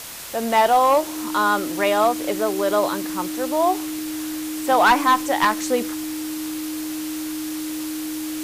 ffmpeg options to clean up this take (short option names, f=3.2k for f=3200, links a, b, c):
-af "bandreject=f=310:w=30,afwtdn=0.02"